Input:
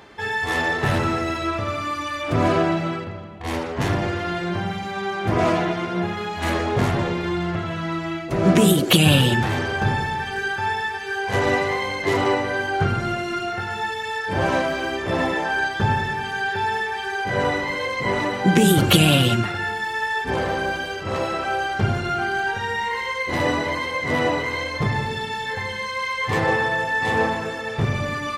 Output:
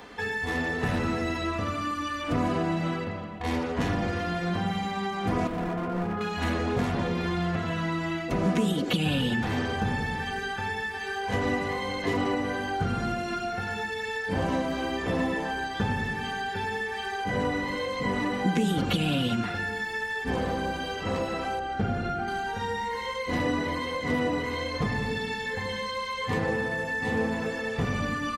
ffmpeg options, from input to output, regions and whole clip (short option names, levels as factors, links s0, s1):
-filter_complex "[0:a]asettb=1/sr,asplit=3[s0][s1][s2];[s0]atrim=end=5.474[s3];[s1]atrim=start=5.47:end=6.21,asetpts=PTS-STARTPTS,afade=t=in:d=0.004:c=qsin,afade=t=out:st=0.736:d=0.004:c=qsin,lowpass=1200,asoftclip=type=hard:threshold=0.0596[s4];[s2]atrim=start=6.206[s5];[s3][s4]acrossfade=d=0.004:c1=hsin:c2=qsin[s6];[s6][s5]acrossfade=d=0.004:c1=qsin:c2=hsin,asettb=1/sr,asplit=3[s7][s8][s9];[s7]atrim=end=21.594[s10];[s8]atrim=start=21.59:end=22.28,asetpts=PTS-STARTPTS,afade=t=in:d=0.004:c=qsin,afade=t=out:st=0.686:d=0.004:c=qsin,lowpass=f=1600:p=1,bandreject=f=1000:w=5.2[s11];[s9]atrim=start=22.276[s12];[s10][s11]acrossfade=d=0.004:c1=hsin:c2=qsin[s13];[s13][s12]acrossfade=d=0.004:c1=qsin:c2=hsin,aecho=1:1:4.1:0.54,acrossover=split=330|6500[s14][s15][s16];[s14]acompressor=threshold=0.0501:ratio=4[s17];[s15]acompressor=threshold=0.0282:ratio=4[s18];[s16]acompressor=threshold=0.00141:ratio=4[s19];[s17][s18][s19]amix=inputs=3:normalize=0"